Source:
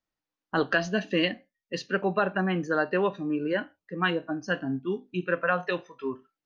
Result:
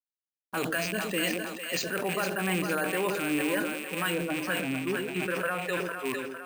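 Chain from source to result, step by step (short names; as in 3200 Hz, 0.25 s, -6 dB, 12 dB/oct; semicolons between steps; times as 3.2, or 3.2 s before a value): rattling part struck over -36 dBFS, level -25 dBFS; limiter -20 dBFS, peak gain reduction 8 dB; tilt +1.5 dB/oct; careless resampling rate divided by 4×, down none, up hold; 4.14–5.94 high shelf 5400 Hz -8.5 dB; requantised 10-bit, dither none; split-band echo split 530 Hz, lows 0.112 s, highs 0.455 s, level -6.5 dB; sustainer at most 38 dB/s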